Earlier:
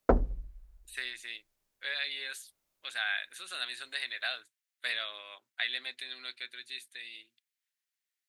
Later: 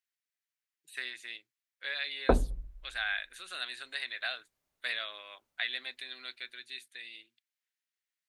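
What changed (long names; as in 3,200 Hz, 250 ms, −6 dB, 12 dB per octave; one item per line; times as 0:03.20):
background: entry +2.20 s
master: add high-shelf EQ 4,900 Hz −5.5 dB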